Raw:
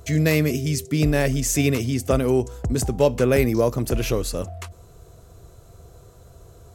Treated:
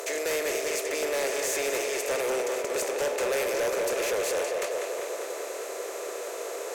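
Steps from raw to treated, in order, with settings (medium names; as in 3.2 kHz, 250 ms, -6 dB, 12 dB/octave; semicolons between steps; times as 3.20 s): spectral levelling over time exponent 0.4; steep high-pass 400 Hz 36 dB/octave; on a send: tape echo 198 ms, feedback 81%, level -6 dB, low-pass 5.4 kHz; on the sum: hard clipper -15.5 dBFS, distortion -11 dB; trim -8.5 dB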